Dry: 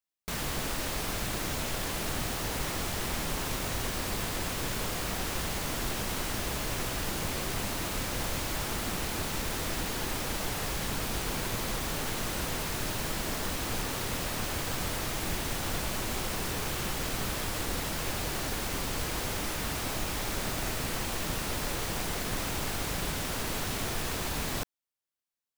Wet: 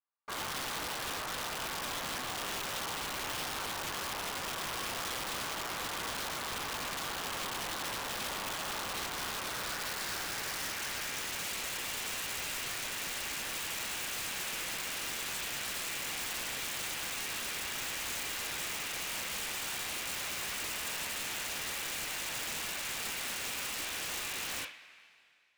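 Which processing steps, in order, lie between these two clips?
band-pass sweep 1.1 kHz -> 2.4 kHz, 9.01–11.47 s; two-slope reverb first 0.26 s, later 2.3 s, from -22 dB, DRR -7 dB; integer overflow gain 32 dB

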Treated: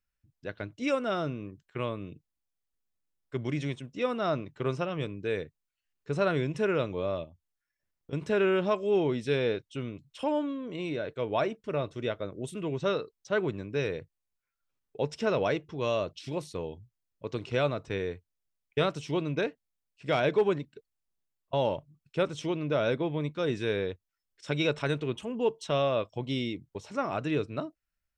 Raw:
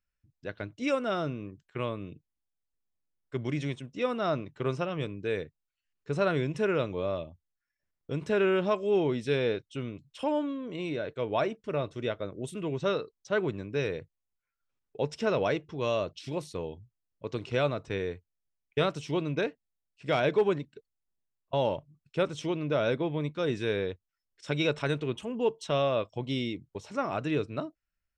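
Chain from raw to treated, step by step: 7.24–8.13 s: compression 3:1, threshold -49 dBFS, peak gain reduction 12.5 dB

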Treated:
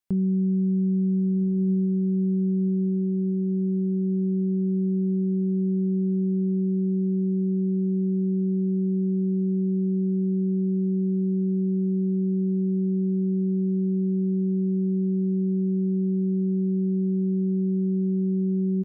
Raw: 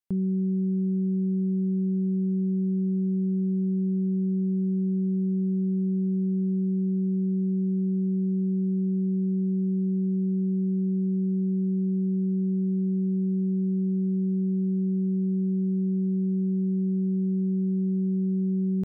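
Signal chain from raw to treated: doubling 25 ms -14 dB; echo that smears into a reverb 1481 ms, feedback 48%, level -9 dB; trim +3 dB

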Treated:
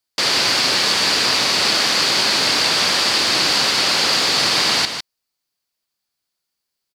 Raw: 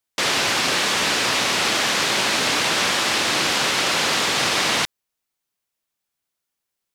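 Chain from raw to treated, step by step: peaking EQ 4.6 kHz +11 dB 0.32 oct; delay 154 ms -8.5 dB

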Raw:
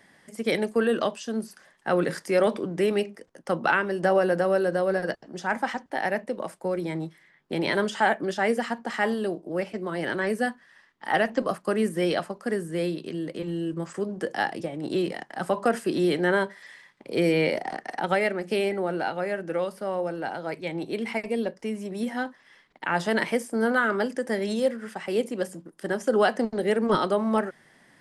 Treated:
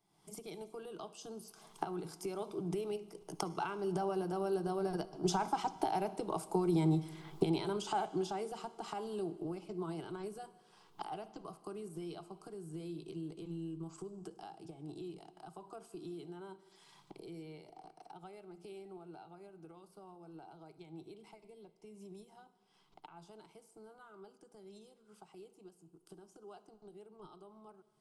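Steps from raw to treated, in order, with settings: recorder AGC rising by 55 dB/s; Doppler pass-by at 5.93 s, 7 m/s, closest 8.7 m; bass shelf 93 Hz +9 dB; static phaser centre 360 Hz, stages 8; reverberation RT60 1.8 s, pre-delay 49 ms, DRR 16 dB; trim -5.5 dB

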